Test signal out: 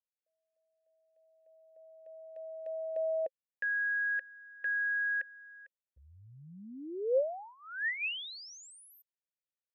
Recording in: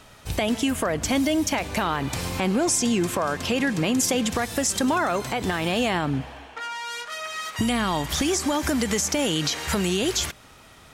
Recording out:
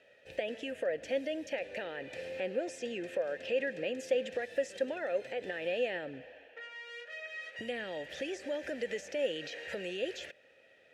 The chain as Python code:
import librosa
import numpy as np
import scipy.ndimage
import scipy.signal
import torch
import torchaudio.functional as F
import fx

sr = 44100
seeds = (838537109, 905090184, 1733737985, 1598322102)

y = fx.vowel_filter(x, sr, vowel='e')